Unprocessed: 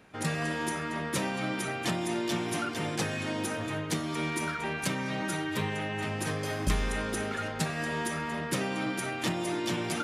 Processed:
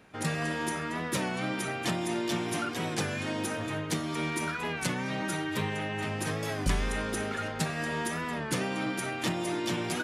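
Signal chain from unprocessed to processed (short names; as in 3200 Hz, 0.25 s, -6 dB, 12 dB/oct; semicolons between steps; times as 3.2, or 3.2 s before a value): record warp 33 1/3 rpm, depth 100 cents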